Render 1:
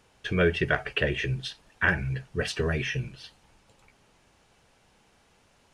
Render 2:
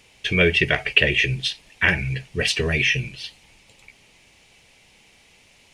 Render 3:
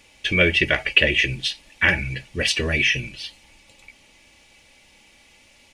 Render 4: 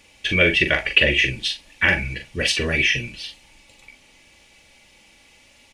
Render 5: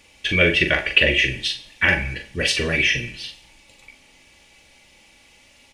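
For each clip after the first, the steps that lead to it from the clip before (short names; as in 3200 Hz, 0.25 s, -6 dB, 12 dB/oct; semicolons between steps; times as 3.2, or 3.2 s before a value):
resonant high shelf 1800 Hz +6 dB, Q 3; gain +4 dB
comb 3.5 ms, depth 46%
doubler 42 ms -7 dB
plate-style reverb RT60 0.72 s, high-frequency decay 0.85×, DRR 11 dB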